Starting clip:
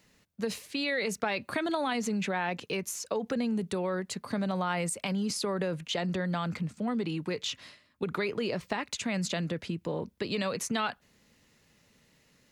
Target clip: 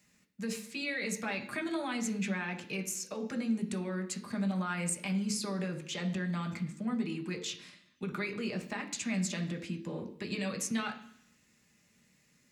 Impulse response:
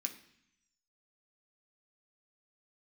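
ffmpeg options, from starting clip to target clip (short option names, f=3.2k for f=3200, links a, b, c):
-filter_complex "[1:a]atrim=start_sample=2205[a];[0:a][a]afir=irnorm=-1:irlink=0,volume=-2.5dB"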